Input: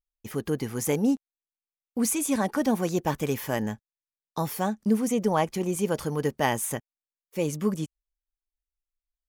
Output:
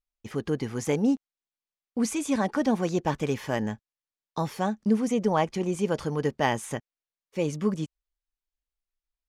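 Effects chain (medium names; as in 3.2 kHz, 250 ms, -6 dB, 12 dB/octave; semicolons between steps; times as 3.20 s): low-pass 6.1 kHz 12 dB/octave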